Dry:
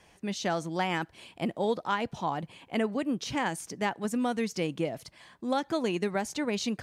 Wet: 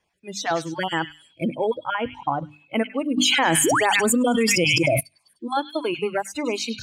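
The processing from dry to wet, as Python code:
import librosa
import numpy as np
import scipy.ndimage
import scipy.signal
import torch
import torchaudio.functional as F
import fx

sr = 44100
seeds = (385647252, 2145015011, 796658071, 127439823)

p1 = fx.spec_dropout(x, sr, seeds[0], share_pct=21)
p2 = fx.noise_reduce_blind(p1, sr, reduce_db=23)
p3 = fx.high_shelf(p2, sr, hz=4600.0, db=-9.0, at=(1.55, 2.05))
p4 = fx.spec_paint(p3, sr, seeds[1], shape='rise', start_s=3.64, length_s=0.22, low_hz=260.0, high_hz=4200.0, level_db=-43.0)
p5 = fx.rider(p4, sr, range_db=5, speed_s=0.5)
p6 = p4 + (p5 * librosa.db_to_amplitude(2.0))
p7 = fx.hum_notches(p6, sr, base_hz=50, count=6)
p8 = fx.echo_stepped(p7, sr, ms=101, hz=3000.0, octaves=0.7, feedback_pct=70, wet_db=-6)
y = fx.env_flatten(p8, sr, amount_pct=100, at=(3.16, 4.99), fade=0.02)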